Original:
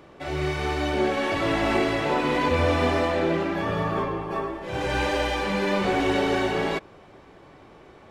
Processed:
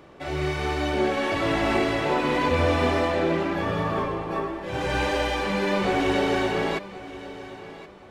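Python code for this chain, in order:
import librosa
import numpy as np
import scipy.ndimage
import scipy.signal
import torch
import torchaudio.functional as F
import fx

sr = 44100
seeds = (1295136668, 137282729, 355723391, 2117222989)

y = fx.echo_feedback(x, sr, ms=1073, feedback_pct=24, wet_db=-16)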